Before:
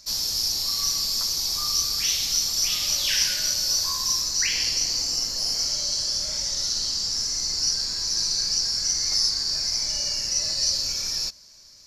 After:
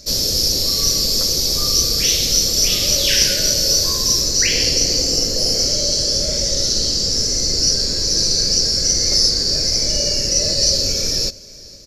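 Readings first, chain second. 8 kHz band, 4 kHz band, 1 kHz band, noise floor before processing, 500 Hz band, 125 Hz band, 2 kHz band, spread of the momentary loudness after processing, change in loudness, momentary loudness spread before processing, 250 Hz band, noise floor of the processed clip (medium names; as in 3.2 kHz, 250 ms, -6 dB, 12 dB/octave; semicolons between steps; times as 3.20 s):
+7.5 dB, +7.5 dB, +3.5 dB, -50 dBFS, +21.0 dB, +17.5 dB, +6.5 dB, 3 LU, +7.5 dB, 3 LU, +18.5 dB, -38 dBFS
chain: resonant low shelf 680 Hz +9.5 dB, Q 3; on a send: delay 467 ms -22.5 dB; on the sum: trim +7.5 dB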